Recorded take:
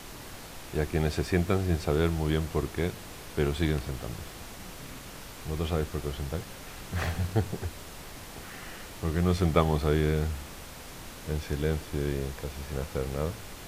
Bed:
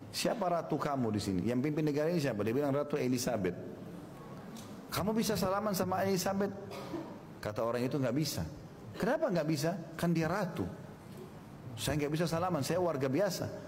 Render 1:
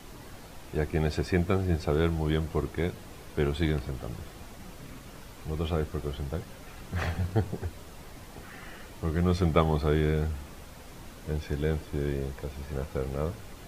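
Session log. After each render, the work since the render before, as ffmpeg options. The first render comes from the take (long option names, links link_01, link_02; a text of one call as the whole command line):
ffmpeg -i in.wav -af "afftdn=noise_reduction=7:noise_floor=-44" out.wav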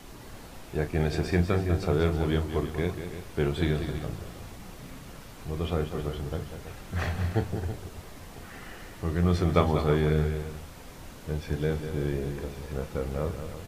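ffmpeg -i in.wav -filter_complex "[0:a]asplit=2[link_01][link_02];[link_02]adelay=34,volume=-11dB[link_03];[link_01][link_03]amix=inputs=2:normalize=0,asplit=2[link_04][link_05];[link_05]aecho=0:1:195|327:0.355|0.251[link_06];[link_04][link_06]amix=inputs=2:normalize=0" out.wav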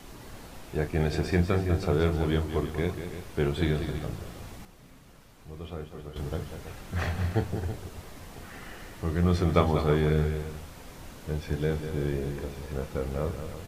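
ffmpeg -i in.wav -filter_complex "[0:a]asplit=3[link_01][link_02][link_03];[link_01]atrim=end=4.652[link_04];[link_02]atrim=start=4.648:end=6.162,asetpts=PTS-STARTPTS,volume=-9.5dB[link_05];[link_03]atrim=start=6.158[link_06];[link_04][link_05]acrossfade=duration=0.004:curve1=hsin:curve2=hsin[link_07];[link_07][link_06]acrossfade=duration=0.004:curve1=hsin:curve2=hsin" out.wav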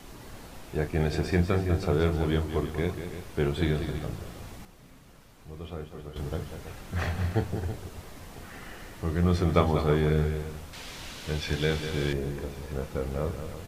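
ffmpeg -i in.wav -filter_complex "[0:a]asettb=1/sr,asplit=3[link_01][link_02][link_03];[link_01]atrim=end=10.734[link_04];[link_02]atrim=start=10.73:end=12.13,asetpts=PTS-STARTPTS,afade=type=in:duration=0.004:curve=qsin,afade=type=out:start_time=1.396:duration=0.004:curve=qsin,equalizer=frequency=3600:width=0.51:gain=13[link_05];[link_03]atrim=start=12.126[link_06];[link_04][link_05]acrossfade=duration=0.004:curve1=hsin:curve2=qsin[link_07];[link_07][link_06]acrossfade=duration=0.004:curve1=qsin:curve2=hsin" out.wav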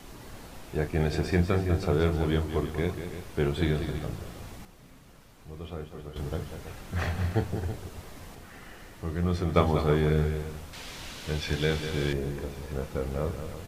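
ffmpeg -i in.wav -filter_complex "[0:a]asplit=3[link_01][link_02][link_03];[link_01]atrim=end=8.352[link_04];[link_02]atrim=start=8.348:end=9.562,asetpts=PTS-STARTPTS,volume=-3.5dB[link_05];[link_03]atrim=start=9.558[link_06];[link_04][link_05]acrossfade=duration=0.004:curve1=hsin:curve2=hsin[link_07];[link_07][link_06]acrossfade=duration=0.004:curve1=hsin:curve2=hsin" out.wav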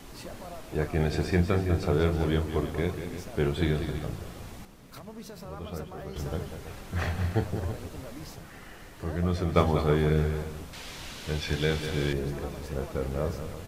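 ffmpeg -i in.wav -i bed.wav -filter_complex "[1:a]volume=-11.5dB[link_01];[0:a][link_01]amix=inputs=2:normalize=0" out.wav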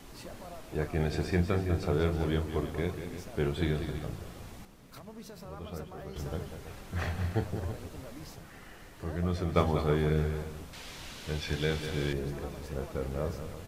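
ffmpeg -i in.wav -af "volume=-3.5dB" out.wav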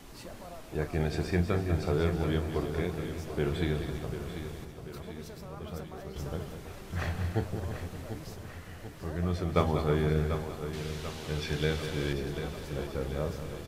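ffmpeg -i in.wav -af "aecho=1:1:740|1480|2220|2960|3700|4440:0.316|0.177|0.0992|0.0555|0.0311|0.0174" out.wav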